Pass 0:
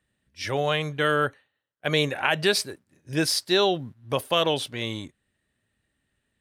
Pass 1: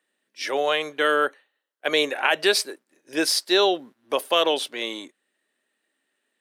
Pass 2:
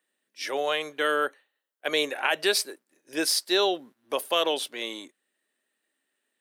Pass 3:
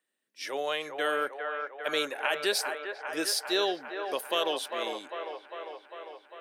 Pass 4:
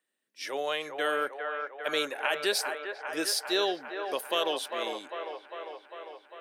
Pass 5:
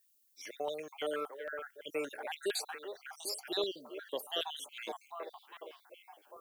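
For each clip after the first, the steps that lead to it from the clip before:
high-pass filter 300 Hz 24 dB per octave; level +2.5 dB
high-shelf EQ 9,000 Hz +8 dB; level −4.5 dB
delay with a band-pass on its return 400 ms, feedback 70%, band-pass 970 Hz, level −4 dB; level −4.5 dB
no processing that can be heard
time-frequency cells dropped at random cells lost 53%; background noise violet −68 dBFS; notch on a step sequencer 8.8 Hz 640–3,400 Hz; level −3.5 dB

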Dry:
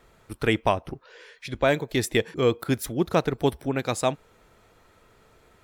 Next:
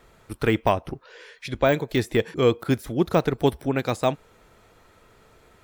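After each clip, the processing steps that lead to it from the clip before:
de-essing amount 80%
level +2.5 dB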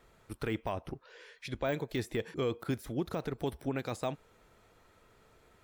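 brickwall limiter −15.5 dBFS, peak gain reduction 10 dB
level −8 dB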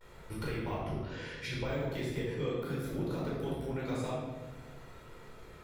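downward compressor 5 to 1, threshold −43 dBFS, peak gain reduction 13.5 dB
pitch vibrato 0.47 Hz 39 cents
rectangular room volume 820 cubic metres, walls mixed, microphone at 4.6 metres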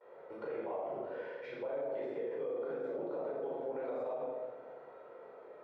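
four-pole ladder band-pass 620 Hz, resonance 50%
on a send: flutter between parallel walls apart 7.1 metres, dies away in 0.35 s
on the sum: brickwall limiter −43 dBFS, peak gain reduction 9.5 dB
level +12 dB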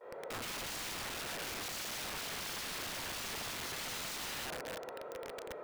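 wrap-around overflow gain 44 dB
level +7.5 dB

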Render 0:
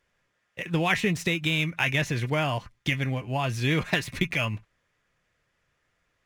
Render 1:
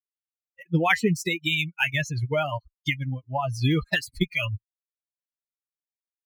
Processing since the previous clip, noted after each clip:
spectral dynamics exaggerated over time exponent 3
level +7.5 dB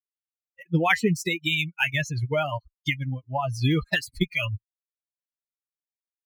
no processing that can be heard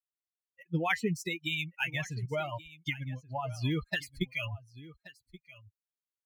single-tap delay 1,128 ms −18.5 dB
level −8.5 dB

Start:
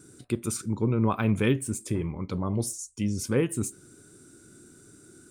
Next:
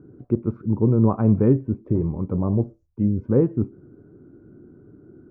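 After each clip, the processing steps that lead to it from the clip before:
Bessel low-pass filter 680 Hz, order 4
level +7.5 dB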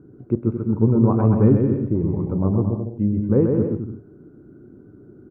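bouncing-ball delay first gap 130 ms, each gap 0.7×, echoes 5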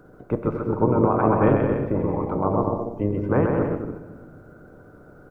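ceiling on every frequency bin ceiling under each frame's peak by 24 dB
rectangular room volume 2,000 cubic metres, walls mixed, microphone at 0.52 metres
level −2.5 dB

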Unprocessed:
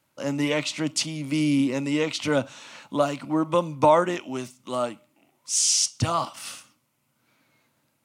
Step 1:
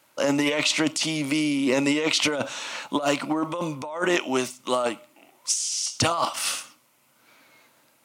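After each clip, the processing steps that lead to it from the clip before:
bass and treble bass −13 dB, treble 0 dB
compressor whose output falls as the input rises −30 dBFS, ratio −1
level +6 dB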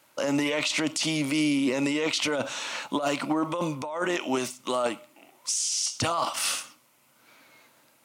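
brickwall limiter −16.5 dBFS, peak gain reduction 8.5 dB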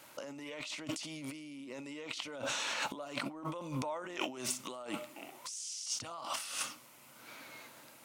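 compressor whose output falls as the input rises −38 dBFS, ratio −1
level −4 dB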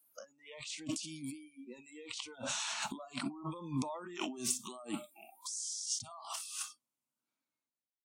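fade-out on the ending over 2.36 s
octave-band graphic EQ 250/500/2,000/8,000 Hz +6/−4/−5/+5 dB
noise reduction from a noise print of the clip's start 28 dB
level −1 dB

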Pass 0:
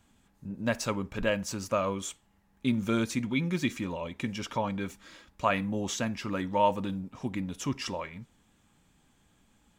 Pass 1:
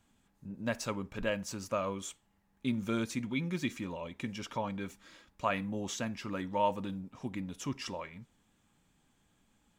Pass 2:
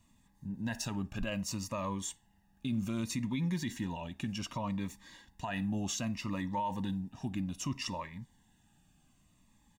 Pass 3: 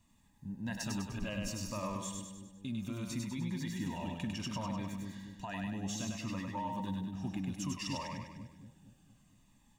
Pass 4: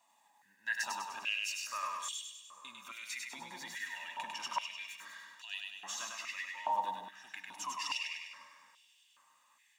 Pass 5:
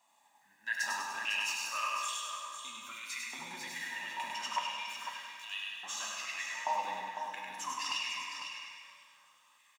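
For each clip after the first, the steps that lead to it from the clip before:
parametric band 63 Hz −3.5 dB; level −5 dB
comb filter 1.1 ms, depth 60%; brickwall limiter −27 dBFS, peak gain reduction 11 dB; phaser whose notches keep moving one way falling 0.64 Hz; level +2 dB
speech leveller 0.5 s; echo with a time of its own for lows and highs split 410 Hz, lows 232 ms, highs 100 ms, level −3 dB; level −4 dB
on a send at −12 dB: convolution reverb RT60 3.0 s, pre-delay 62 ms; on the sum: high-pass on a step sequencer 2.4 Hz 770–3,100 Hz; level +1 dB
single-tap delay 502 ms −8 dB; dense smooth reverb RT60 1.7 s, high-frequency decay 0.85×, DRR 1.5 dB

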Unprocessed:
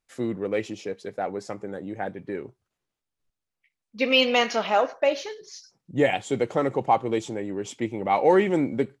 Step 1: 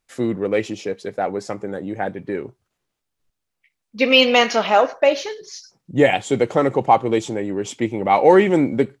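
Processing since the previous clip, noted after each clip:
de-essing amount 40%
level +6.5 dB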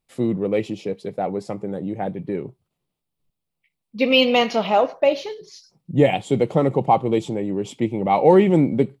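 graphic EQ with 15 bands 160 Hz +9 dB, 1,600 Hz −11 dB, 6,300 Hz −9 dB
level −1.5 dB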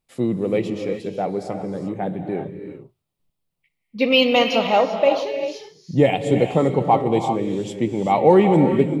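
reverb whose tail is shaped and stops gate 420 ms rising, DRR 6 dB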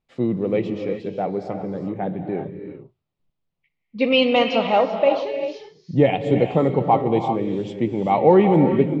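high-frequency loss of the air 170 metres

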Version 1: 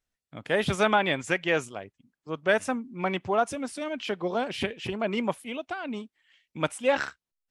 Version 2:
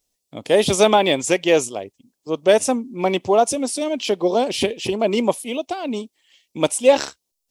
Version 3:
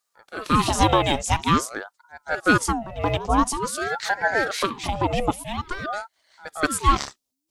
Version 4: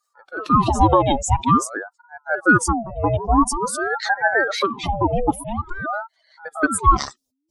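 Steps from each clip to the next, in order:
drawn EQ curve 160 Hz 0 dB, 240 Hz +5 dB, 360 Hz +8 dB, 520 Hz +8 dB, 1,000 Hz +3 dB, 1,500 Hz −8 dB, 2,400 Hz +2 dB, 5,500 Hz +13 dB; level +3.5 dB
echo ahead of the sound 177 ms −16 dB; ring modulator whose carrier an LFO sweeps 730 Hz, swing 65%, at 0.48 Hz; level −1 dB
expanding power law on the bin magnitudes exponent 2.2; level +4 dB

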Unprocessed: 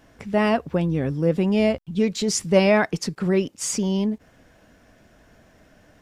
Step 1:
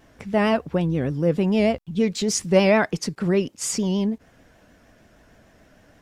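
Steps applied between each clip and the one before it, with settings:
pitch vibrato 6.6 Hz 74 cents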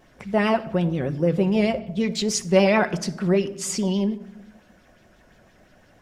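rectangular room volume 3,200 cubic metres, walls furnished, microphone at 1 metre
auto-filter bell 5.7 Hz 510–4,300 Hz +7 dB
level −2.5 dB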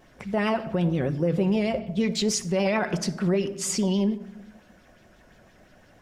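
brickwall limiter −15.5 dBFS, peak gain reduction 10 dB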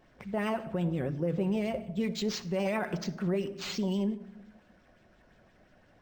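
linearly interpolated sample-rate reduction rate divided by 4×
level −6.5 dB

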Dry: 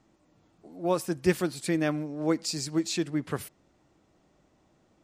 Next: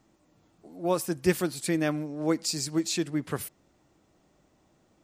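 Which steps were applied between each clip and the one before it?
high-shelf EQ 9,000 Hz +8.5 dB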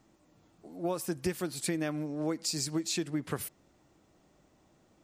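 downward compressor 10 to 1, threshold −28 dBFS, peak gain reduction 11.5 dB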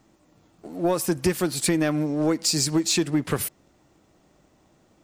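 leveller curve on the samples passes 1
level +7 dB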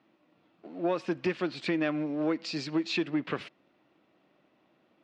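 loudspeaker in its box 230–3,800 Hz, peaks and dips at 430 Hz −3 dB, 830 Hz −3 dB, 2,600 Hz +4 dB
level −4.5 dB

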